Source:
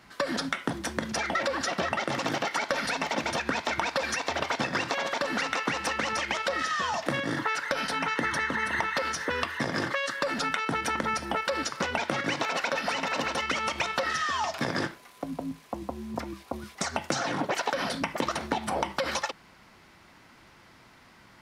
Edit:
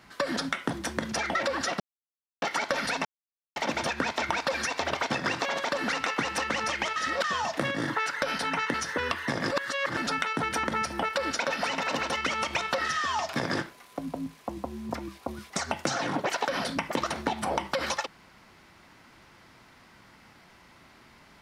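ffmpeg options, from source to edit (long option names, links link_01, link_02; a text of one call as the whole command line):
ffmpeg -i in.wav -filter_complex "[0:a]asplit=10[link_01][link_02][link_03][link_04][link_05][link_06][link_07][link_08][link_09][link_10];[link_01]atrim=end=1.8,asetpts=PTS-STARTPTS,afade=type=out:start_time=1.796:duration=0.004:curve=hsin[link_11];[link_02]atrim=start=1.8:end=2.42,asetpts=PTS-STARTPTS,volume=0[link_12];[link_03]atrim=start=2.42:end=3.05,asetpts=PTS-STARTPTS,afade=type=in:duration=0.004:curve=hsin,afade=type=out:start_time=0.626:duration=0.004:curve=hsin,apad=pad_dur=0.51[link_13];[link_04]atrim=start=3.05:end=6.452,asetpts=PTS-STARTPTS,afade=type=in:duration=0.004:curve=hsin[link_14];[link_05]atrim=start=6.448:end=6.732,asetpts=PTS-STARTPTS,areverse[link_15];[link_06]atrim=start=6.728:end=8.232[link_16];[link_07]atrim=start=9.058:end=9.832[link_17];[link_08]atrim=start=9.828:end=10.292,asetpts=PTS-STARTPTS,areverse[link_18];[link_09]atrim=start=10.288:end=11.712[link_19];[link_10]atrim=start=12.638[link_20];[link_11][link_12][link_13][link_14]concat=n=4:v=0:a=1[link_21];[link_21][link_15]acrossfade=duration=0.004:curve1=hsin:curve2=hsin[link_22];[link_22][link_16]acrossfade=duration=0.004:curve1=hsin:curve2=hsin[link_23];[link_23][link_17]acrossfade=duration=0.004:curve1=hsin:curve2=hsin[link_24];[link_24][link_18]acrossfade=duration=0.004:curve1=hsin:curve2=hsin[link_25];[link_25][link_19]acrossfade=duration=0.004:curve1=hsin:curve2=hsin[link_26];[link_26][link_20]acrossfade=duration=0.004:curve1=hsin:curve2=hsin" out.wav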